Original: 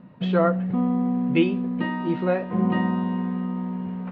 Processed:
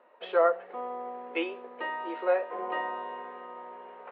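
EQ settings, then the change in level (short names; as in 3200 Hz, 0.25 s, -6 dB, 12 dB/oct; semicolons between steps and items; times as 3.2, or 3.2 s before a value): steep high-pass 430 Hz 36 dB/oct; air absorption 300 m; 0.0 dB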